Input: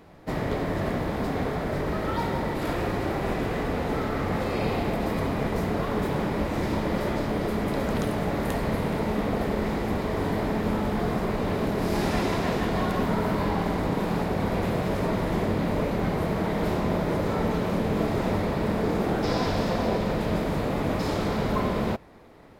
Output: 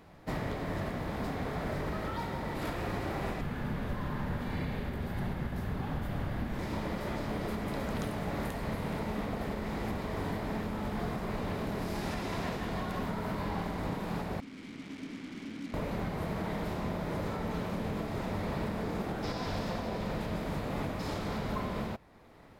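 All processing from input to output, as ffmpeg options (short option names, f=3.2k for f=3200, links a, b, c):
-filter_complex "[0:a]asettb=1/sr,asplit=3[a][b][c];[a]atrim=end=3.414[d];[b]atrim=start=3.41:end=6.59,asetpts=PTS-STARTPTS,afade=t=in:d=0.004:c=qsin,afade=t=out:st=3.176:d=0.004:c=qsin,equalizer=f=7.2k:t=o:w=1.5:g=-6,afreqshift=-280[e];[c]atrim=start=6.586[f];[d][e]acrossfade=d=0.004:c1=hsin:c2=qsin[g];[g][f]acrossfade=d=0.004:c1=qsin:c2=hsin,asettb=1/sr,asplit=3[h][i][j];[h]atrim=end=14.404[k];[i]atrim=start=14.4:end=15.74,asetpts=PTS-STARTPTS,afade=t=in:d=0.004:c=qsin,afade=t=out:st=1.336:d=0.004:c=qsin,asplit=3[l][m][n];[l]bandpass=f=270:t=q:w=8,volume=0dB[o];[m]bandpass=f=2.29k:t=q:w=8,volume=-6dB[p];[n]bandpass=f=3.01k:t=q:w=8,volume=-9dB[q];[o][p][q]amix=inputs=3:normalize=0,acrusher=bits=6:mix=0:aa=0.5[r];[j]atrim=start=15.736[s];[k][r]acrossfade=d=0.004:c1=hsin:c2=qsin[t];[t][s]acrossfade=d=0.004:c1=qsin:c2=hsin,equalizer=f=400:t=o:w=1.4:g=-4,alimiter=limit=-22dB:level=0:latency=1:release=492,volume=-3dB"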